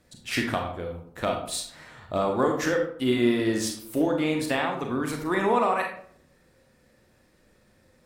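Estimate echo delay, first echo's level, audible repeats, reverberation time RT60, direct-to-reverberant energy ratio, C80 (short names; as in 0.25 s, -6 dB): none, none, none, 0.60 s, 1.5 dB, 9.5 dB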